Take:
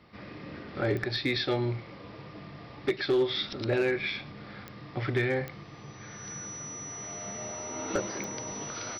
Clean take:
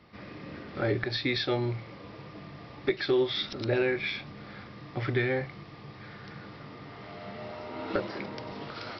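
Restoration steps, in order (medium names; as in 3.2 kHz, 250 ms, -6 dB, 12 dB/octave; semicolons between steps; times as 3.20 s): clip repair -19.5 dBFS; de-click; band-stop 5.9 kHz, Q 30; inverse comb 108 ms -20.5 dB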